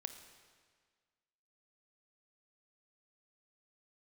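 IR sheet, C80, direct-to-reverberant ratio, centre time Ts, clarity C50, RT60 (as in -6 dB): 10.0 dB, 8.0 dB, 20 ms, 9.0 dB, 1.7 s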